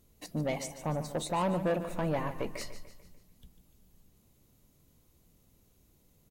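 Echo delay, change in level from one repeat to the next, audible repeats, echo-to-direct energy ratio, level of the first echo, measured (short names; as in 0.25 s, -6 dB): 0.147 s, -6.5 dB, 4, -11.5 dB, -12.5 dB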